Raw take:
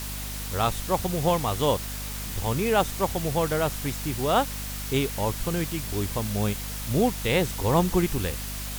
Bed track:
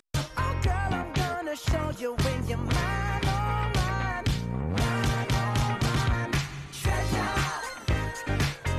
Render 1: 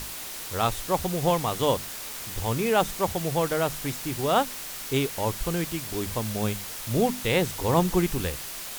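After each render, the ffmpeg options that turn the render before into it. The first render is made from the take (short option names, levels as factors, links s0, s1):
-af "bandreject=f=50:t=h:w=6,bandreject=f=100:t=h:w=6,bandreject=f=150:t=h:w=6,bandreject=f=200:t=h:w=6,bandreject=f=250:t=h:w=6"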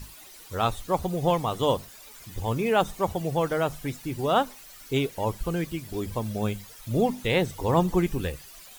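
-af "afftdn=nr=14:nf=-37"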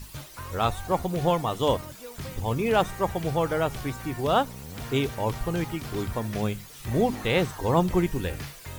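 -filter_complex "[1:a]volume=0.266[s0];[0:a][s0]amix=inputs=2:normalize=0"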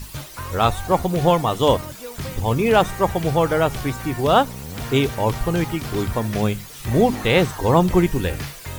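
-af "volume=2.24,alimiter=limit=0.708:level=0:latency=1"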